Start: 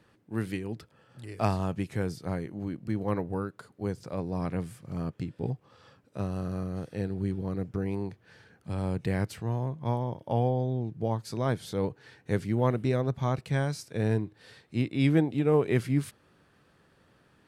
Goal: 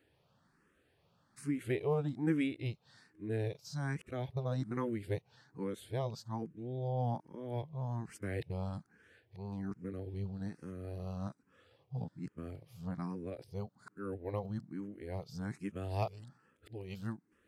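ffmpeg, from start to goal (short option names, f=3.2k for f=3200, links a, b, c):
-filter_complex "[0:a]areverse,asplit=2[a][b];[b]afreqshift=1.2[c];[a][c]amix=inputs=2:normalize=1,volume=-6dB"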